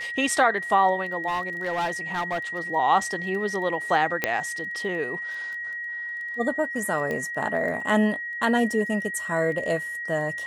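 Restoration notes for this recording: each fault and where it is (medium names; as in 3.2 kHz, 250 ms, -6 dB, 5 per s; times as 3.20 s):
crackle 10 per s
whine 1.9 kHz -30 dBFS
1.27–2.60 s: clipped -22.5 dBFS
4.24 s: pop -7 dBFS
7.11 s: pop -18 dBFS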